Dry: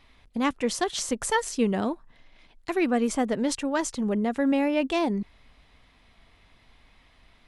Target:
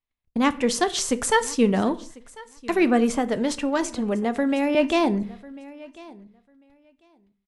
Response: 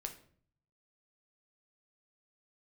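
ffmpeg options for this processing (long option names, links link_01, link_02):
-filter_complex "[0:a]agate=range=-39dB:threshold=-50dB:ratio=16:detection=peak,aecho=1:1:1046|2092:0.0794|0.0119,asettb=1/sr,asplit=3[link_01][link_02][link_03];[link_01]atrim=end=3.104[link_04];[link_02]atrim=start=3.1:end=4.75,asetpts=PTS-STARTPTS,afade=type=in:duration=0.004:curve=qsin,afade=type=out:start_time=1.646:duration=0.004:curve=qsin,acrossover=split=400|3500[link_05][link_06][link_07];[link_05]acompressor=threshold=-30dB:ratio=4[link_08];[link_06]acompressor=threshold=-27dB:ratio=4[link_09];[link_07]acompressor=threshold=-38dB:ratio=4[link_10];[link_08][link_09][link_10]amix=inputs=3:normalize=0[link_11];[link_03]atrim=start=4.746[link_12];[link_04][link_11]acrossfade=duration=0.004:curve1=hsin:curve2=qsin[link_13];[link_13][link_12]acrossfade=duration=0.004:curve1=qsin:curve2=hsin,asplit=2[link_14][link_15];[1:a]atrim=start_sample=2205,afade=type=out:start_time=0.25:duration=0.01,atrim=end_sample=11466[link_16];[link_15][link_16]afir=irnorm=-1:irlink=0,volume=0dB[link_17];[link_14][link_17]amix=inputs=2:normalize=0"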